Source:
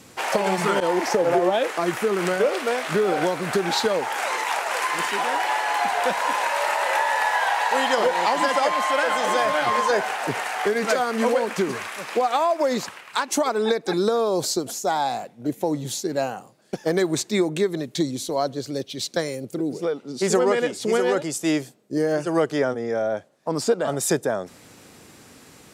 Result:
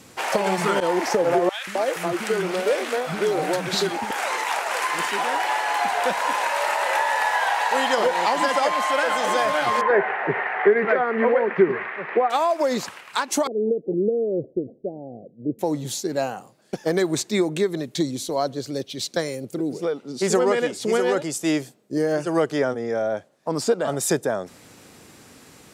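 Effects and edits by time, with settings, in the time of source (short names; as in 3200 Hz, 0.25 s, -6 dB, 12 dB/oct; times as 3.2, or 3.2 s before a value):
1.49–4.11 three bands offset in time highs, lows, mids 0.18/0.26 s, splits 250/1200 Hz
9.81–12.3 speaker cabinet 140–2300 Hz, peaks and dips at 160 Hz +6 dB, 270 Hz -4 dB, 390 Hz +9 dB, 1900 Hz +8 dB
13.47–15.59 steep low-pass 550 Hz 48 dB/oct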